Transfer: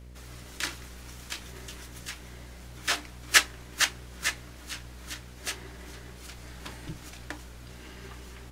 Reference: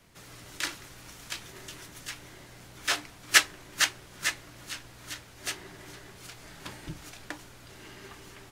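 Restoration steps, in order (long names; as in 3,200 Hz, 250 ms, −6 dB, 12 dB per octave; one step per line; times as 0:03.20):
hum removal 61.2 Hz, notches 10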